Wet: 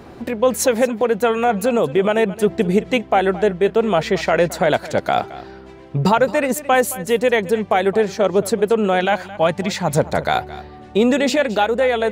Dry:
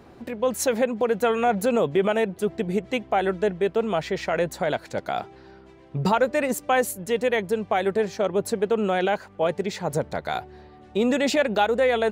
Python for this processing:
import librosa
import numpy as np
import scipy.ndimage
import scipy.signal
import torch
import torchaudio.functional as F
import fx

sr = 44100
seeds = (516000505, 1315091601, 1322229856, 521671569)

p1 = fx.peak_eq(x, sr, hz=430.0, db=-12.5, octaves=0.51, at=(9.0, 9.98))
p2 = fx.rider(p1, sr, range_db=3, speed_s=0.5)
p3 = p2 + fx.echo_single(p2, sr, ms=219, db=-17.0, dry=0)
y = p3 * 10.0 ** (6.5 / 20.0)